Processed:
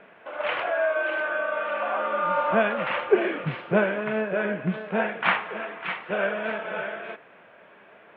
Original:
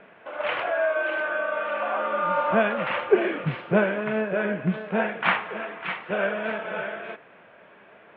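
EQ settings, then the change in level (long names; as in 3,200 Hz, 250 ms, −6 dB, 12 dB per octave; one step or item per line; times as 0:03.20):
low-shelf EQ 190 Hz −4 dB
0.0 dB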